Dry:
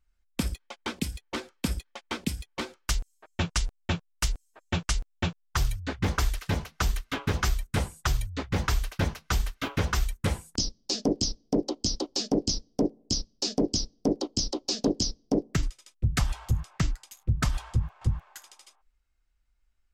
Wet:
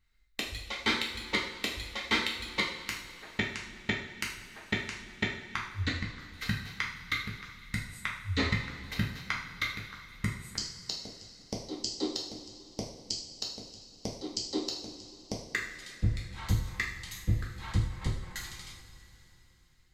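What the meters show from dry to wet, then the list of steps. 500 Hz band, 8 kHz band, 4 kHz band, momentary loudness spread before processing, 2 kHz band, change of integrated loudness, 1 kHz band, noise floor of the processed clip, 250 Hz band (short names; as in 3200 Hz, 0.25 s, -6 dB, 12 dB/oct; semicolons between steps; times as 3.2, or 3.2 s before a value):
-8.5 dB, -8.5 dB, -2.5 dB, 7 LU, +3.0 dB, -4.5 dB, -5.0 dB, -59 dBFS, -7.5 dB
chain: thirty-one-band EQ 100 Hz +5 dB, 630 Hz -6 dB, 2000 Hz +12 dB, 4000 Hz +11 dB, 10000 Hz -3 dB; flipped gate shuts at -16 dBFS, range -34 dB; two-slope reverb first 0.55 s, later 3.6 s, from -16 dB, DRR -3.5 dB; gain -1 dB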